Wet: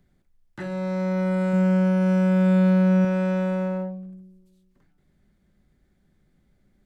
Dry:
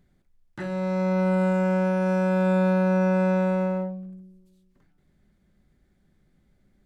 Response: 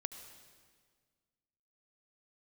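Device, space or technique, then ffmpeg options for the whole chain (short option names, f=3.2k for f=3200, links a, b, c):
one-band saturation: -filter_complex "[0:a]acrossover=split=280|2400[a][b][c];[b]asoftclip=type=tanh:threshold=-25dB[d];[a][d][c]amix=inputs=3:normalize=0,asettb=1/sr,asplit=3[e][f][g];[e]atrim=end=1.534[h];[f]atrim=start=1.53:end=3.05,asetpts=PTS-STARTPTS,afade=t=in:d=0.004:c=qsin,afade=t=out:st=1.516:d=0.004:c=qsin,equalizer=f=190:w=1.5:g=5.5[i];[g]atrim=start=3.046[j];[h][i]acrossfade=d=0.004:c1=hsin:c2=qsin[k];[k][j]acrossfade=d=0.004:c1=qsin:c2=hsin"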